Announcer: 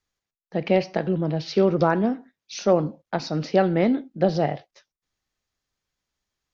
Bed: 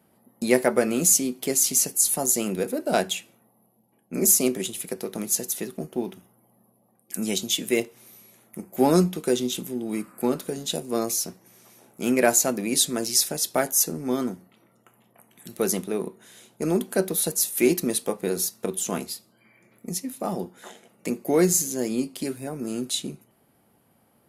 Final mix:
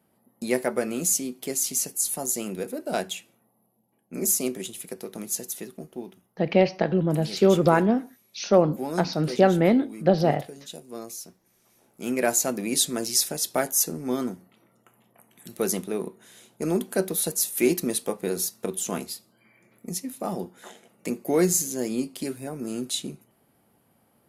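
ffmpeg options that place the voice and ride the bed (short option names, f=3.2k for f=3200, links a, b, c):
-filter_complex "[0:a]adelay=5850,volume=1dB[a];[1:a]volume=5.5dB,afade=t=out:st=5.51:d=0.86:silence=0.446684,afade=t=in:st=11.59:d=1.03:silence=0.298538[b];[a][b]amix=inputs=2:normalize=0"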